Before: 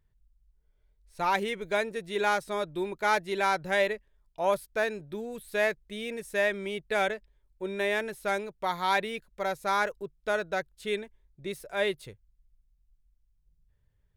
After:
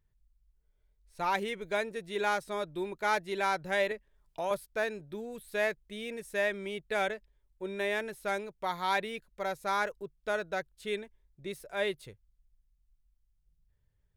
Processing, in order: 3.91–4.51 three-band squash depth 70%; gain -3.5 dB

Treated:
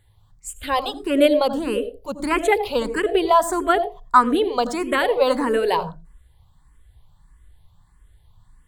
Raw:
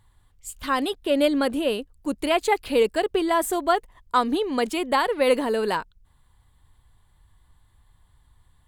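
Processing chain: dynamic EQ 1100 Hz, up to +5 dB, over -34 dBFS, Q 0.9; on a send at -12 dB: reverb RT60 0.30 s, pre-delay 76 ms; on the sum: endless phaser +1.6 Hz; gain +4 dB

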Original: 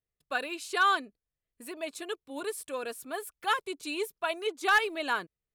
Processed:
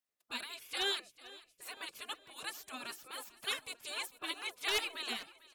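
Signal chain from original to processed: feedback echo 0.446 s, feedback 50%, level -19.5 dB; spectral gate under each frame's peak -15 dB weak; gain +2 dB

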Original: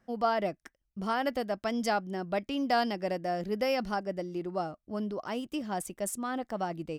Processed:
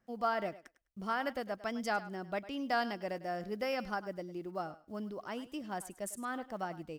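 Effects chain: block floating point 7-bit; dynamic EQ 1500 Hz, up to +6 dB, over -43 dBFS, Q 1.3; on a send: thinning echo 0.102 s, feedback 16%, high-pass 360 Hz, level -15 dB; on the sum: gain -7 dB

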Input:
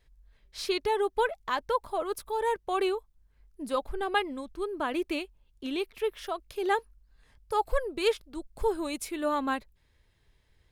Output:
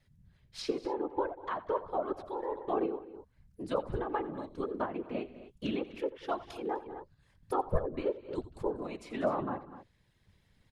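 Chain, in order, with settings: treble ducked by the level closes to 890 Hz, closed at -25.5 dBFS; whisperiser; on a send: tapped delay 85/191/251 ms -17/-20/-16.5 dB; on the sum: random-step tremolo

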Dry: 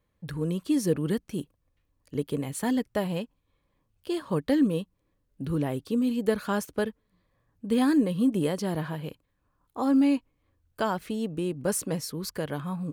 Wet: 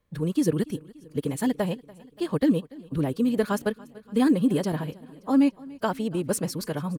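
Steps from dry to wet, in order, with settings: time stretch by phase-locked vocoder 0.54×; on a send: feedback echo 0.288 s, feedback 59%, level -22 dB; on the sum: gain +3 dB

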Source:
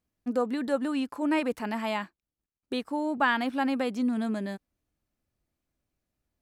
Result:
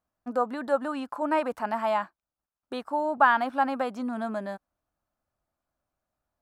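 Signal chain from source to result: band shelf 940 Hz +11.5 dB; gain -5 dB

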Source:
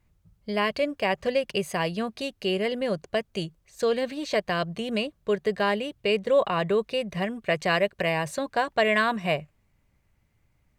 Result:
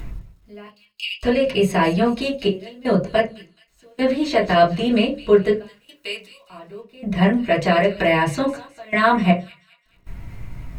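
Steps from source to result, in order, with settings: 0.66–1.23 steep high-pass 2500 Hz 96 dB/oct; 5.62–6.5 differentiator; upward compressor, threshold -33 dBFS; limiter -17.5 dBFS, peak gain reduction 7 dB; 3.38–3.98 compressor 5:1, threshold -36 dBFS, peak gain reduction 13 dB; step gate "x....xxxxxxxx..x" 79 bpm -24 dB; bit-crush 12-bit; thin delay 0.213 s, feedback 39%, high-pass 3400 Hz, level -12 dB; reverb RT60 0.30 s, pre-delay 3 ms, DRR -6 dB; gain +1 dB

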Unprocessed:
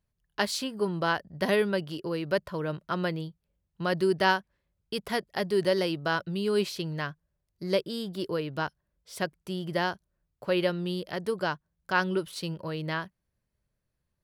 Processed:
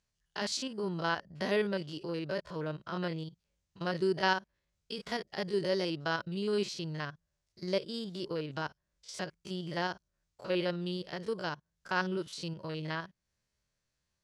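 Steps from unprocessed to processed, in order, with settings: stepped spectrum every 50 ms; synth low-pass 6600 Hz, resonance Q 1.8; mismatched tape noise reduction encoder only; gain -4.5 dB

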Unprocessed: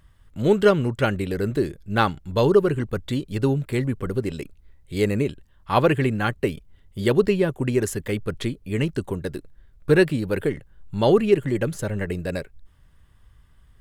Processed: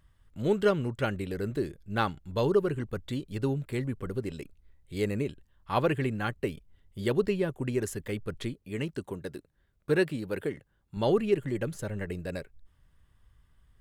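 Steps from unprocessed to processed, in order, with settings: 8.54–10.97 HPF 140 Hz 6 dB/oct; gain -8 dB

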